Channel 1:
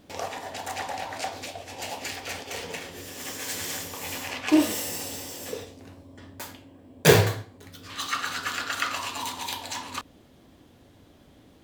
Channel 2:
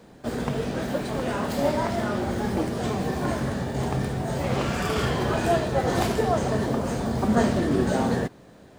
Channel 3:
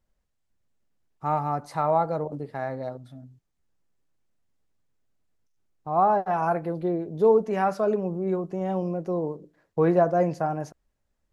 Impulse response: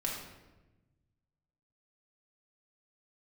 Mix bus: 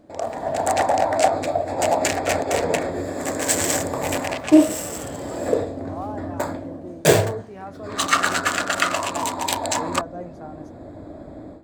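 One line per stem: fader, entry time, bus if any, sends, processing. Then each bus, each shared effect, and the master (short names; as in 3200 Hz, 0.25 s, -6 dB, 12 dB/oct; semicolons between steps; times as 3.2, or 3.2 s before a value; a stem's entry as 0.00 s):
-1.0 dB, 0.00 s, no send, Wiener smoothing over 15 samples; thirty-one-band EQ 315 Hz +7 dB, 630 Hz +12 dB, 8000 Hz +10 dB; AGC gain up to 15 dB
-12.5 dB, 0.00 s, no send, auto duck -13 dB, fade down 0.50 s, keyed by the third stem
-13.0 dB, 0.00 s, no send, dry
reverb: off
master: dry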